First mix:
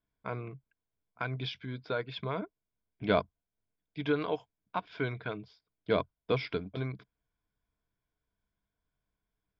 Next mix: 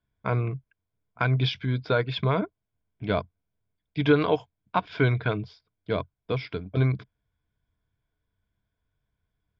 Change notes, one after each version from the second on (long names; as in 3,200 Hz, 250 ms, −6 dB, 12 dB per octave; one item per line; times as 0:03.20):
first voice +9.0 dB
master: add parametric band 99 Hz +8.5 dB 1 octave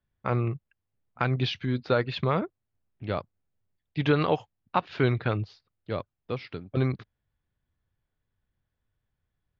second voice −3.5 dB
master: remove EQ curve with evenly spaced ripples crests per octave 1.7, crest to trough 9 dB